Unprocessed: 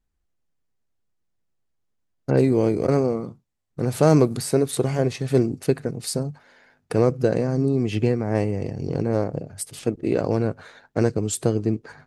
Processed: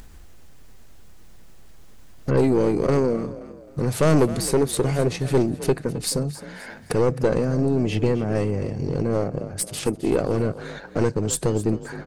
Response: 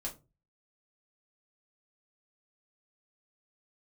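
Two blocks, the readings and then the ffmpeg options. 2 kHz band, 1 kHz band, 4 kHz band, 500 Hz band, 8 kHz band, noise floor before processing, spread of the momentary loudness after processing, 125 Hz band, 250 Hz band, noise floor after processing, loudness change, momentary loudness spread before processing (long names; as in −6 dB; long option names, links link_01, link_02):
+2.5 dB, +0.5 dB, +3.0 dB, 0.0 dB, +3.0 dB, −73 dBFS, 9 LU, −0.5 dB, −0.5 dB, −43 dBFS, 0.0 dB, 10 LU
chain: -filter_complex "[0:a]acompressor=mode=upward:threshold=-23dB:ratio=2.5,aeval=exprs='(tanh(5.01*val(0)+0.35)-tanh(0.35))/5.01':channel_layout=same,asplit=4[link_01][link_02][link_03][link_04];[link_02]adelay=263,afreqshift=37,volume=-15.5dB[link_05];[link_03]adelay=526,afreqshift=74,volume=-24.1dB[link_06];[link_04]adelay=789,afreqshift=111,volume=-32.8dB[link_07];[link_01][link_05][link_06][link_07]amix=inputs=4:normalize=0,volume=3.5dB"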